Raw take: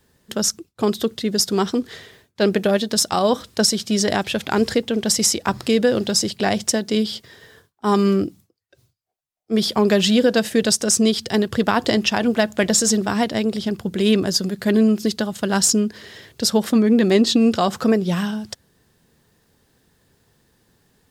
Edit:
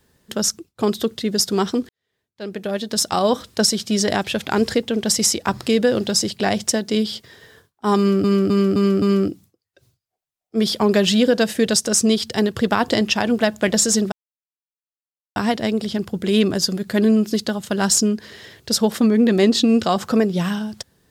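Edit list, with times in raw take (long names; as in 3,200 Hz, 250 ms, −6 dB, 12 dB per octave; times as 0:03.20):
0:01.89–0:03.09: fade in quadratic
0:07.98–0:08.24: repeat, 5 plays
0:13.08: splice in silence 1.24 s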